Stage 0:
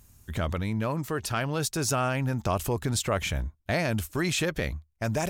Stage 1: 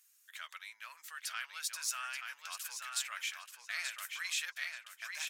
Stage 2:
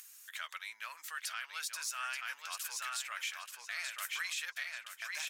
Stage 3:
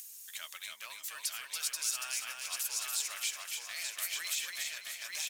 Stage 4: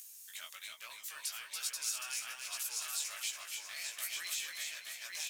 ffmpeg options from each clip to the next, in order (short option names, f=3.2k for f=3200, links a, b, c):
-filter_complex "[0:a]highpass=f=1.5k:w=0.5412,highpass=f=1.5k:w=1.3066,flanger=delay=3.3:depth=2.2:regen=-52:speed=0.85:shape=triangular,asplit=2[a][b];[b]adelay=881,lowpass=f=4.6k:p=1,volume=-4dB,asplit=2[c][d];[d]adelay=881,lowpass=f=4.6k:p=1,volume=0.33,asplit=2[e][f];[f]adelay=881,lowpass=f=4.6k:p=1,volume=0.33,asplit=2[g][h];[h]adelay=881,lowpass=f=4.6k:p=1,volume=0.33[i];[c][e][g][i]amix=inputs=4:normalize=0[j];[a][j]amix=inputs=2:normalize=0,volume=-2dB"
-af "lowshelf=f=450:g=7.5,alimiter=level_in=7.5dB:limit=-24dB:level=0:latency=1:release=169,volume=-7.5dB,acompressor=mode=upward:threshold=-50dB:ratio=2.5,volume=4dB"
-filter_complex "[0:a]equalizer=f=1.4k:w=0.72:g=-15,acrossover=split=560|4400[a][b][c];[b]acrusher=bits=3:mode=log:mix=0:aa=0.000001[d];[a][d][c]amix=inputs=3:normalize=0,aecho=1:1:284|568|852|1136|1420:0.631|0.246|0.096|0.0374|0.0146,volume=7dB"
-af "flanger=delay=15.5:depth=5.6:speed=1.2"